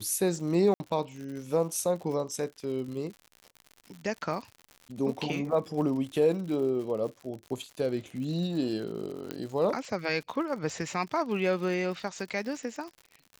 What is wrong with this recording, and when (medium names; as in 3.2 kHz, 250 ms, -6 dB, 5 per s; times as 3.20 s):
crackle 91 per s -38 dBFS
0.74–0.80 s: dropout 60 ms
9.31 s: pop -20 dBFS